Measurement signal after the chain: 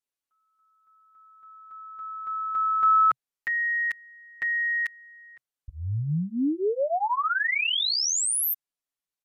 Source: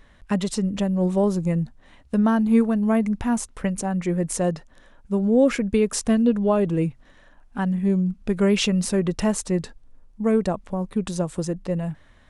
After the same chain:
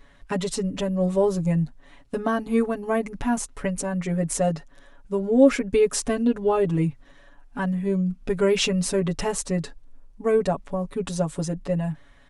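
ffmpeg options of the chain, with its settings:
-af "equalizer=f=130:t=o:w=0.25:g=-7.5,aecho=1:1:7.1:0.99,aresample=32000,aresample=44100,volume=0.75"

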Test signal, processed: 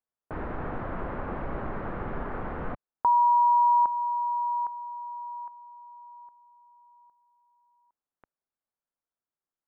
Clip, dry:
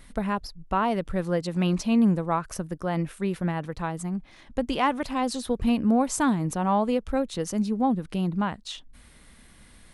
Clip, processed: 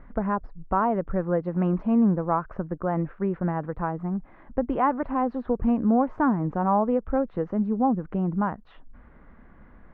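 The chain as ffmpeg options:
-filter_complex "[0:a]lowpass=f=1500:w=0.5412,lowpass=f=1500:w=1.3066,equalizer=f=90:w=0.64:g=-4,asplit=2[s0][s1];[s1]acompressor=threshold=0.0282:ratio=6,volume=0.708[s2];[s0][s2]amix=inputs=2:normalize=0"

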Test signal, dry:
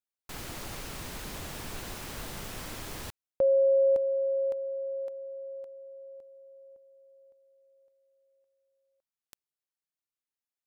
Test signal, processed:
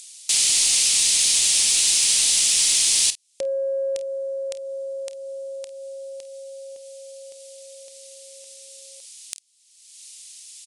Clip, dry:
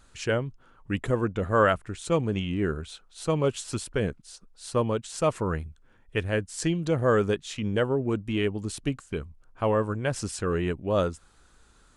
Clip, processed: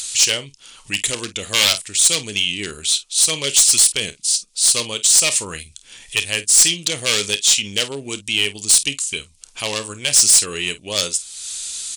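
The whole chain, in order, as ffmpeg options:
-af "aeval=exprs='0.141*(abs(mod(val(0)/0.141+3,4)-2)-1)':c=same,aecho=1:1:29|50:0.158|0.15,aexciter=amount=10.9:drive=2.9:freq=2200,acompressor=mode=upward:threshold=0.0891:ratio=2.5:attack=0.58:release=473:knee=2.83:detection=peak,aresample=22050,aresample=44100,lowshelf=f=170:g=-8,acontrast=25,highshelf=f=2800:g=12,aeval=exprs='3.76*(cos(1*acos(clip(val(0)/3.76,-1,1)))-cos(1*PI/2))+0.106*(cos(4*acos(clip(val(0)/3.76,-1,1)))-cos(4*PI/2))+0.944*(cos(5*acos(clip(val(0)/3.76,-1,1)))-cos(5*PI/2))':c=same,volume=0.188"

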